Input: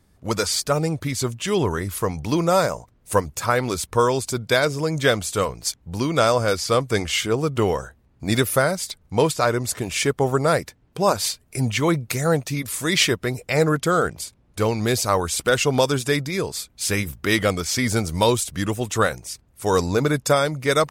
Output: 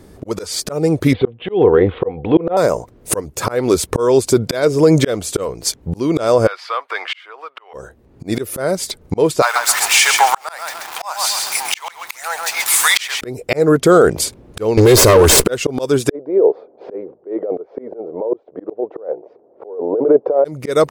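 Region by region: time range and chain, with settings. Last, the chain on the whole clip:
1.13–2.57 steep low-pass 3600 Hz 72 dB/oct + transient shaper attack -11 dB, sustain -4 dB + small resonant body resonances 490/750 Hz, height 13 dB, ringing for 65 ms
6.47–7.74 compressor 5:1, threshold -20 dBFS + HPF 970 Hz 24 dB/oct + air absorption 410 m
9.42–13.21 zero-crossing step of -27 dBFS + elliptic high-pass 810 Hz, stop band 60 dB + lo-fi delay 0.133 s, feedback 35%, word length 7-bit, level -6.5 dB
14.77–15.45 minimum comb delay 1.9 ms + sample leveller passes 3
16.1–20.45 Butterworth band-pass 560 Hz, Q 1.4 + air absorption 230 m + negative-ratio compressor -30 dBFS
whole clip: bell 400 Hz +12 dB 1.5 oct; auto swell 0.752 s; maximiser +14.5 dB; gain -1 dB

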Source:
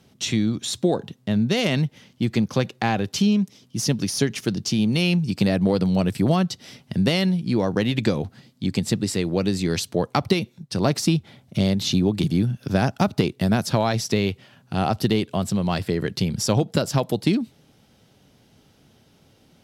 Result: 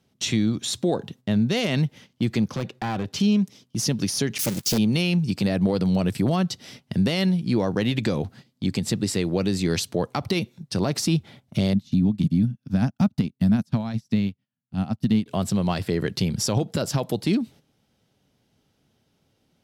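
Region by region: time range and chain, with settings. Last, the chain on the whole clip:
2.51–3.2 high shelf 5400 Hz -9 dB + hard clip -21 dBFS + core saturation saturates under 130 Hz
4.38–4.78 switching spikes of -18.5 dBFS + gate -27 dBFS, range -22 dB + Doppler distortion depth 1 ms
11.73–15.26 resonant low shelf 300 Hz +7 dB, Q 3 + upward expander 2.5:1, over -28 dBFS
whole clip: gate -44 dBFS, range -11 dB; limiter -12.5 dBFS

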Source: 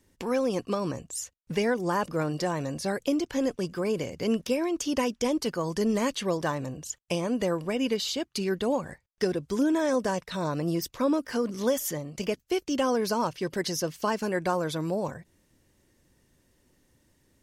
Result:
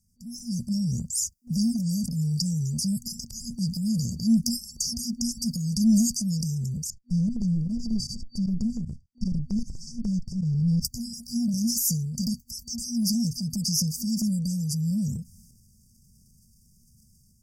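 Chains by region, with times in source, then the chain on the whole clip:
6.9–10.85 minimum comb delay 1.3 ms + tape spacing loss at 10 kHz 21 dB + pump 154 bpm, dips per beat 1, -22 dB, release 66 ms
whole clip: FFT band-reject 240–4600 Hz; AGC gain up to 10.5 dB; transient shaper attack -3 dB, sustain +7 dB; gain -2 dB

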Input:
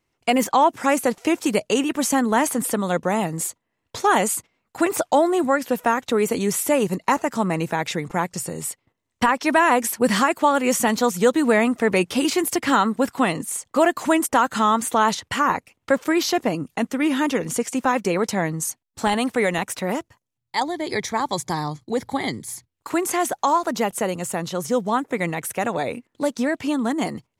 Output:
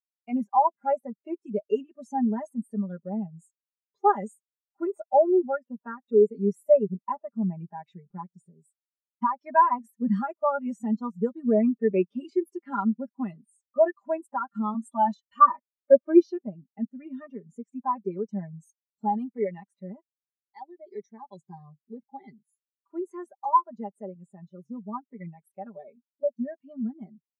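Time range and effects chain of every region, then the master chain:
14.74–16.23 comb 3.3 ms, depth 82% + three-band expander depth 40%
whole clip: comb 5 ms, depth 75%; spectral expander 2.5:1; gain -3.5 dB

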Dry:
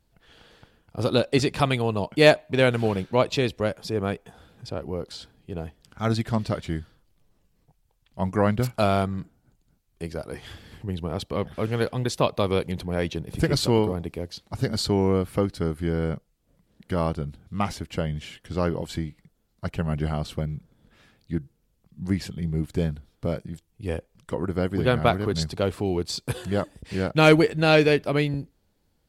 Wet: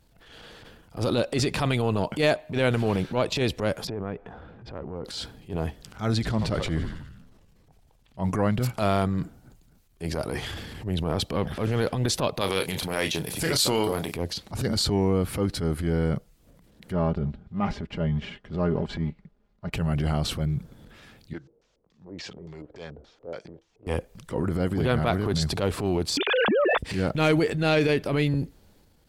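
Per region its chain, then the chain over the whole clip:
3.87–5.05 LPF 1700 Hz + compressor 2:1, threshold -44 dBFS
6.14–8.24 high shelf 9800 Hz -8.5 dB + frequency-shifting echo 81 ms, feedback 60%, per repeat -55 Hz, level -14 dB
12.41–14.14 tilt +3 dB/oct + doubler 31 ms -11 dB
16.92–19.73 G.711 law mismatch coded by A + tape spacing loss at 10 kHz 31 dB + comb 4.9 ms, depth 51%
21.33–23.87 three-band isolator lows -19 dB, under 410 Hz, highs -17 dB, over 5200 Hz + compressor 2:1, threshold -50 dBFS + LFO low-pass square 3.5 Hz 460–6500 Hz
26.17–26.78 sine-wave speech + fast leveller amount 100%
whole clip: compressor 3:1, threshold -28 dBFS; transient shaper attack -10 dB, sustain +5 dB; gain +7 dB

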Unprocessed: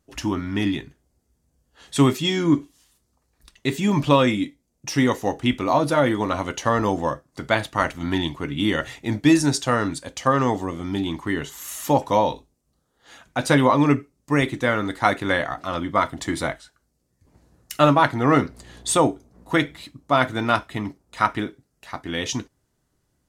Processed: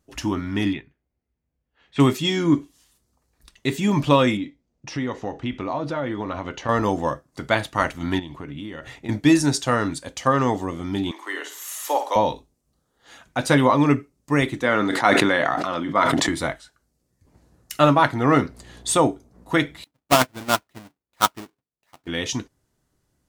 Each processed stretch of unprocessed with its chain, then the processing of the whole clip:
0.73–2 LPF 3000 Hz + bell 2300 Hz +7.5 dB 0.69 oct + upward expander, over -40 dBFS
4.37–6.69 compressor 2.5:1, threshold -25 dBFS + air absorption 140 m
8.19–9.09 compressor 12:1, threshold -29 dBFS + high shelf 3400 Hz -8.5 dB
11.11–12.16 Bessel high-pass 610 Hz, order 8 + de-esser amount 40% + flutter echo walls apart 8.8 m, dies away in 0.39 s
14.62–16.29 HPF 170 Hz + high shelf 9600 Hz -11.5 dB + sustainer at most 20 dB/s
19.84–22.07 half-waves squared off + low shelf 110 Hz -8 dB + upward expander 2.5:1, over -30 dBFS
whole clip: dry

